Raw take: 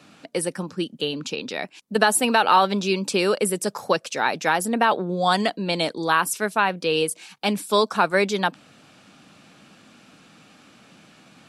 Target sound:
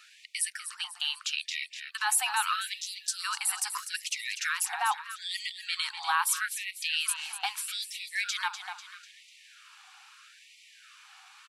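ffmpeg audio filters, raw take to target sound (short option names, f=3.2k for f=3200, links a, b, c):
-filter_complex "[0:a]alimiter=limit=-15dB:level=0:latency=1:release=23,asplit=3[a][b][c];[a]afade=t=out:st=2.8:d=0.02[d];[b]asuperstop=centerf=2200:order=4:qfactor=0.63,afade=t=in:st=2.8:d=0.02,afade=t=out:st=3.23:d=0.02[e];[c]afade=t=in:st=3.23:d=0.02[f];[d][e][f]amix=inputs=3:normalize=0,asplit=2[g][h];[h]aecho=0:1:247|494|741|988|1235:0.316|0.149|0.0699|0.0328|0.0154[i];[g][i]amix=inputs=2:normalize=0,afftfilt=real='re*gte(b*sr/1024,700*pow(1900/700,0.5+0.5*sin(2*PI*0.78*pts/sr)))':imag='im*gte(b*sr/1024,700*pow(1900/700,0.5+0.5*sin(2*PI*0.78*pts/sr)))':win_size=1024:overlap=0.75"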